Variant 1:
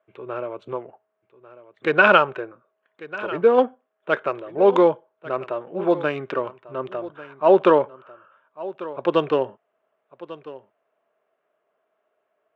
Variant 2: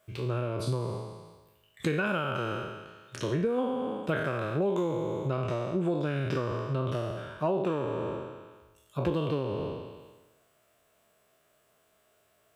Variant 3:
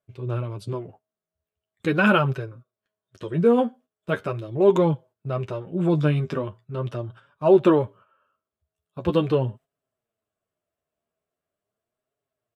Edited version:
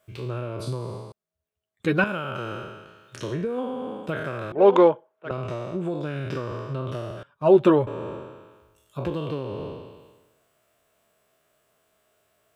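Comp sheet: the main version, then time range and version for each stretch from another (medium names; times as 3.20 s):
2
1.12–2.04 s: from 3
4.52–5.31 s: from 1
7.23–7.87 s: from 3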